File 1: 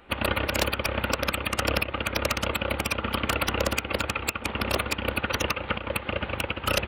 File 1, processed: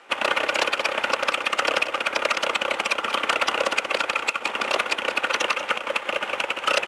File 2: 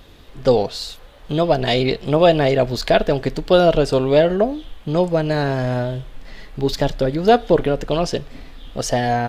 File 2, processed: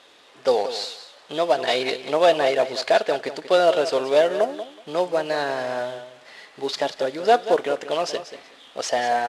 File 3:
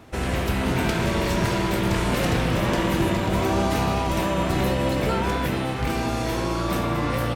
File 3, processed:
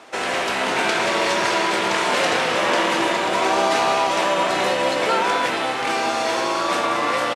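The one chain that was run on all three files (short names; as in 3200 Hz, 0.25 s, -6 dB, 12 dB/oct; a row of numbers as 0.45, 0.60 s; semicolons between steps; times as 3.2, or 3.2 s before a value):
CVSD 64 kbps; BPF 540–7500 Hz; on a send: feedback echo 0.186 s, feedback 17%, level -12 dB; on the sum: normalise peaks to -6 dBFS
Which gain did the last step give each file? +6.0, -0.5, +8.0 dB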